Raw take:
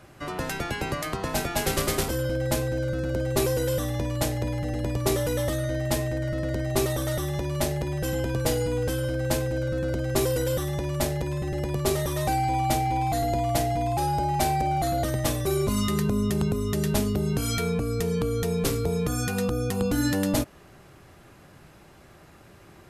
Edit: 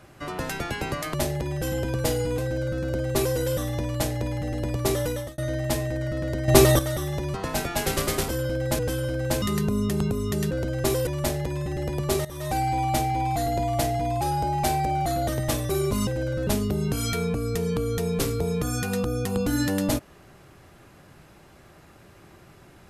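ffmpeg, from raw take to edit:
ffmpeg -i in.wav -filter_complex "[0:a]asplit=14[link_01][link_02][link_03][link_04][link_05][link_06][link_07][link_08][link_09][link_10][link_11][link_12][link_13][link_14];[link_01]atrim=end=1.142[link_15];[link_02]atrim=start=7.548:end=8.792[link_16];[link_03]atrim=start=2.588:end=5.59,asetpts=PTS-STARTPTS,afade=type=out:start_time=2.682:duration=0.32[link_17];[link_04]atrim=start=5.59:end=6.692,asetpts=PTS-STARTPTS,afade=type=in:duration=0.004:curve=hsin[link_18];[link_05]atrim=start=6.688:end=7.002,asetpts=PTS-STARTPTS,volume=9.5dB[link_19];[link_06]atrim=start=6.998:end=7.552[link_20];[link_07]atrim=start=1.138:end=2.592[link_21];[link_08]atrim=start=8.788:end=9.422[link_22];[link_09]atrim=start=15.828:end=16.922[link_23];[link_10]atrim=start=9.818:end=10.382[link_24];[link_11]atrim=start=10.828:end=12.01,asetpts=PTS-STARTPTS,afade=type=out:start_time=1.178:duration=0.004:curve=hsin:silence=0.158489[link_25];[link_12]atrim=start=12.01:end=15.832,asetpts=PTS-STARTPTS,afade=type=in:duration=0.34:silence=0.158489[link_26];[link_13]atrim=start=9.418:end=9.822[link_27];[link_14]atrim=start=16.918[link_28];[link_15][link_16]acrossfade=duration=0.004:curve1=hsin:curve2=hsin[link_29];[link_17][link_18]concat=n=2:v=0:a=1[link_30];[link_29][link_30]acrossfade=duration=0.004:curve1=hsin:curve2=hsin[link_31];[link_31][link_19]acrossfade=duration=0.004:curve1=hsin:curve2=hsin[link_32];[link_32][link_20]acrossfade=duration=0.004:curve1=hsin:curve2=hsin[link_33];[link_33][link_21]acrossfade=duration=0.004:curve1=hsin:curve2=hsin[link_34];[link_34][link_22]acrossfade=duration=0.004:curve1=hsin:curve2=hsin[link_35];[link_35][link_23]acrossfade=duration=0.004:curve1=hsin:curve2=hsin[link_36];[link_36][link_24]acrossfade=duration=0.004:curve1=hsin:curve2=hsin[link_37];[link_25][link_26]concat=n=2:v=0:a=1[link_38];[link_37][link_38]acrossfade=duration=0.004:curve1=hsin:curve2=hsin[link_39];[link_39][link_27]acrossfade=duration=0.004:curve1=hsin:curve2=hsin[link_40];[link_40][link_28]acrossfade=duration=0.004:curve1=hsin:curve2=hsin" out.wav

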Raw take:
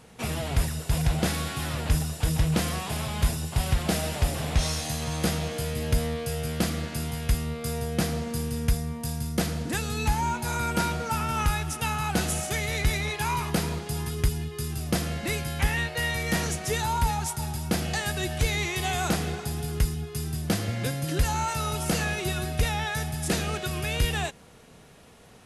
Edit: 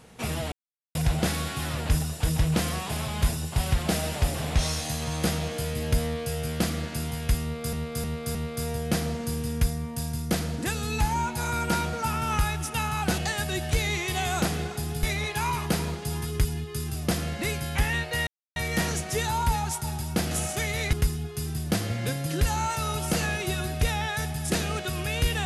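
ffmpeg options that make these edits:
ffmpeg -i in.wav -filter_complex "[0:a]asplit=11[link_01][link_02][link_03][link_04][link_05][link_06][link_07][link_08][link_09][link_10][link_11];[link_01]atrim=end=0.52,asetpts=PTS-STARTPTS,afade=type=out:start_time=0.516:duration=0.004:curve=hsin[link_12];[link_02]atrim=start=0.52:end=0.95,asetpts=PTS-STARTPTS,volume=0[link_13];[link_03]atrim=start=0.95:end=7.732,asetpts=PTS-STARTPTS,afade=type=in:duration=0.004:curve=hsin[link_14];[link_04]atrim=start=7.418:end=7.732[link_15];[link_05]atrim=start=7.418:end=7.732[link_16];[link_06]atrim=start=7.418:end=12.252[link_17];[link_07]atrim=start=17.858:end=19.712[link_18];[link_08]atrim=start=12.868:end=16.11,asetpts=PTS-STARTPTS,afade=type=out:start_time=3.238:duration=0.004:curve=hsin,apad=pad_dur=0.29[link_19];[link_09]atrim=start=16.11:end=17.862,asetpts=PTS-STARTPTS,afade=type=in:duration=0.004:curve=hsin[link_20];[link_10]atrim=start=12.248:end=12.872[link_21];[link_11]atrim=start=19.708[link_22];[link_12][link_13][link_14]concat=n=3:v=0:a=1[link_23];[link_23][link_15]acrossfade=duration=0.004:curve1=hsin:curve2=hsin[link_24];[link_24][link_16]acrossfade=duration=0.004:curve1=hsin:curve2=hsin[link_25];[link_25][link_17]acrossfade=duration=0.004:curve1=hsin:curve2=hsin[link_26];[link_26][link_18]acrossfade=duration=0.004:curve1=hsin:curve2=hsin[link_27];[link_19][link_20]concat=n=2:v=0:a=1[link_28];[link_27][link_28]acrossfade=duration=0.004:curve1=hsin:curve2=hsin[link_29];[link_29][link_21]acrossfade=duration=0.004:curve1=hsin:curve2=hsin[link_30];[link_30][link_22]acrossfade=duration=0.004:curve1=hsin:curve2=hsin" out.wav

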